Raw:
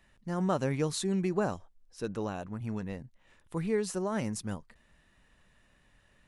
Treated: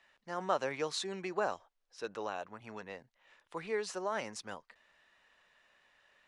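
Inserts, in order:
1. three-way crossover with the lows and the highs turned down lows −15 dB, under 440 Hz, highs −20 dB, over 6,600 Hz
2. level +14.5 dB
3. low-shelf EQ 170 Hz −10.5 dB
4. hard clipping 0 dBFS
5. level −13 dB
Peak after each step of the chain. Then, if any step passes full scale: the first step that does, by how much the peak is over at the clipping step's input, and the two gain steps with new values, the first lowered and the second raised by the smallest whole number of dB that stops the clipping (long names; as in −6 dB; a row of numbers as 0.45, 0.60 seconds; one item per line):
−18.0, −3.5, −4.0, −4.0, −17.0 dBFS
no step passes full scale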